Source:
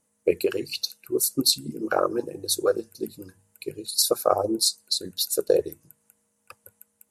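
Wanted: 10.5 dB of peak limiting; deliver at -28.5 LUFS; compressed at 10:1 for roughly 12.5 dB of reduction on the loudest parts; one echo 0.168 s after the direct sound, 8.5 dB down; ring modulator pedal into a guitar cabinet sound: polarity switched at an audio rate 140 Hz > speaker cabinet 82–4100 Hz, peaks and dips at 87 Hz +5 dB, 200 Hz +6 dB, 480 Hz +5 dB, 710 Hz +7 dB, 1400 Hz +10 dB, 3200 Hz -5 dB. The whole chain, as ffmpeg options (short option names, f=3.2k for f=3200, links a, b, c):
-af "acompressor=threshold=-27dB:ratio=10,alimiter=limit=-24dB:level=0:latency=1,aecho=1:1:168:0.376,aeval=exprs='val(0)*sgn(sin(2*PI*140*n/s))':c=same,highpass=82,equalizer=f=87:t=q:w=4:g=5,equalizer=f=200:t=q:w=4:g=6,equalizer=f=480:t=q:w=4:g=5,equalizer=f=710:t=q:w=4:g=7,equalizer=f=1.4k:t=q:w=4:g=10,equalizer=f=3.2k:t=q:w=4:g=-5,lowpass=f=4.1k:w=0.5412,lowpass=f=4.1k:w=1.3066,volume=5.5dB"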